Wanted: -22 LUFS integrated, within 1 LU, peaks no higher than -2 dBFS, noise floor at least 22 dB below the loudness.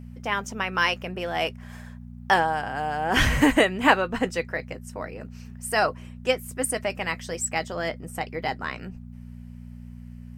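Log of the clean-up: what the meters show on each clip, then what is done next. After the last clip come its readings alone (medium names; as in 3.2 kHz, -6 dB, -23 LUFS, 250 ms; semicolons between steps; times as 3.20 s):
hum 60 Hz; highest harmonic 240 Hz; hum level -38 dBFS; loudness -25.5 LUFS; peak level -2.0 dBFS; loudness target -22.0 LUFS
-> de-hum 60 Hz, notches 4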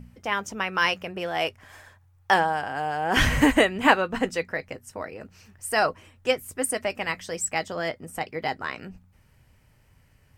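hum not found; loudness -25.5 LUFS; peak level -2.0 dBFS; loudness target -22.0 LUFS
-> trim +3.5 dB; peak limiter -2 dBFS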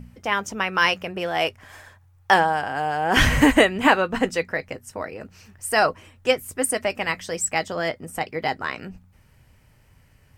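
loudness -22.0 LUFS; peak level -2.0 dBFS; noise floor -57 dBFS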